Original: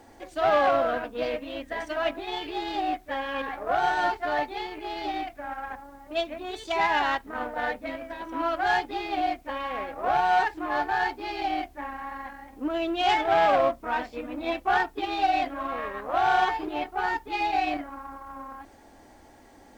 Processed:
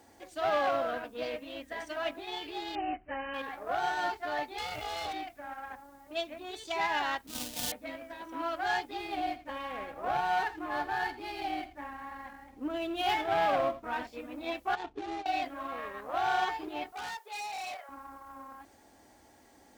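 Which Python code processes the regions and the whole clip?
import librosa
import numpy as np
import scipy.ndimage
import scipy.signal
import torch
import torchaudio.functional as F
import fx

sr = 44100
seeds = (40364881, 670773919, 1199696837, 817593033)

y = fx.chain(x, sr, fx.brickwall_lowpass(high_hz=3100.0),
    fx.low_shelf(hz=160.0, db=8.5), at=(2.75, 3.34))
y = fx.chain(y, sr, fx.lower_of_two(delay_ms=1.4),
    fx.env_flatten(amount_pct=70), at=(4.58, 5.13))
y = fx.chain(y, sr, fx.halfwave_hold(),
    fx.band_shelf(hz=880.0, db=-12.0, octaves=2.9), at=(7.27, 7.72))
y = fx.chain(y, sr, fx.median_filter(points=5),
    fx.bass_treble(bass_db=5, treble_db=-2),
    fx.echo_single(ms=83, db=-14.5), at=(8.97, 14.07))
y = fx.chain(y, sr, fx.median_filter(points=25),
    fx.lowpass(hz=4200.0, slope=12),
    fx.over_compress(threshold_db=-32.0, ratio=-1.0), at=(14.75, 15.26))
y = fx.chain(y, sr, fx.brickwall_highpass(low_hz=390.0),
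    fx.clip_hard(threshold_db=-30.5), at=(16.92, 17.89))
y = scipy.signal.sosfilt(scipy.signal.butter(2, 54.0, 'highpass', fs=sr, output='sos'), y)
y = fx.high_shelf(y, sr, hz=3700.0, db=7.5)
y = y * 10.0 ** (-7.5 / 20.0)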